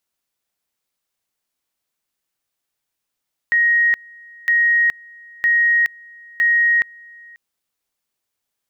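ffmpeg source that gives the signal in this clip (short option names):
-f lavfi -i "aevalsrc='pow(10,(-12-27*gte(mod(t,0.96),0.42))/20)*sin(2*PI*1880*t)':d=3.84:s=44100"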